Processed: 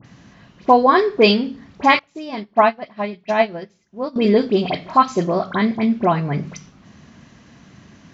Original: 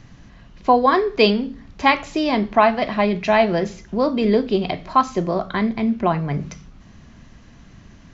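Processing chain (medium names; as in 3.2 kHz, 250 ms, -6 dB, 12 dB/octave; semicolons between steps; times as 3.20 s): high-pass 120 Hz 12 dB/octave; phase dispersion highs, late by 51 ms, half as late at 2.1 kHz; 1.99–4.16 s: upward expansion 2.5:1, over -27 dBFS; trim +2.5 dB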